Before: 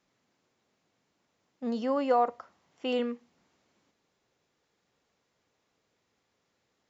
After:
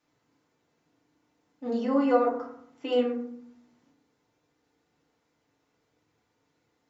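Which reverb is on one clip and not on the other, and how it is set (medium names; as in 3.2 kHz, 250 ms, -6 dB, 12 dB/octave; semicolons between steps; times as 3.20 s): FDN reverb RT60 0.67 s, low-frequency decay 1.5×, high-frequency decay 0.4×, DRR -5 dB; trim -4.5 dB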